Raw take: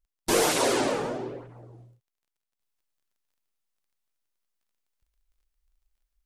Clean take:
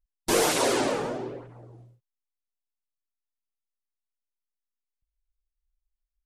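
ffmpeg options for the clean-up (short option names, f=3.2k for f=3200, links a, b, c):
-af "adeclick=t=4,asetnsamples=n=441:p=0,asendcmd='2.6 volume volume -7dB',volume=0dB"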